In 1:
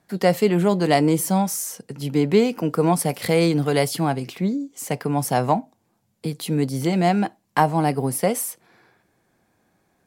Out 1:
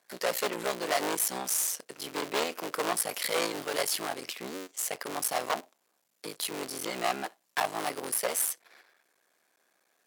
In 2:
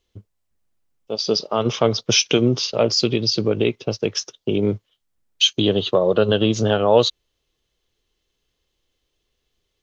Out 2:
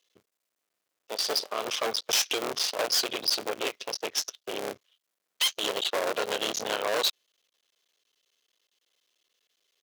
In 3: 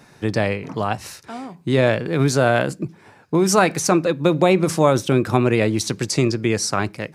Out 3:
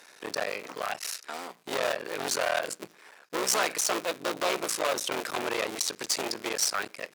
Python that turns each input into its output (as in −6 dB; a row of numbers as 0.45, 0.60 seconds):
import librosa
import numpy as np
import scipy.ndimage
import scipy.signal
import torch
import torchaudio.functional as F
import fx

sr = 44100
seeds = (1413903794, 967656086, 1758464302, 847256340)

p1 = fx.cycle_switch(x, sr, every=3, mode='muted')
p2 = fx.high_shelf(p1, sr, hz=2200.0, db=5.0)
p3 = fx.level_steps(p2, sr, step_db=19)
p4 = p2 + F.gain(torch.from_numpy(p3), 1.5).numpy()
p5 = fx.peak_eq(p4, sr, hz=860.0, db=-5.0, octaves=0.4)
p6 = fx.tube_stage(p5, sr, drive_db=17.0, bias=0.5)
p7 = scipy.signal.sosfilt(scipy.signal.butter(2, 550.0, 'highpass', fs=sr, output='sos'), p6)
y = F.gain(torch.from_numpy(p7), -3.0).numpy()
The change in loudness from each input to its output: −9.5, −9.0, −10.5 LU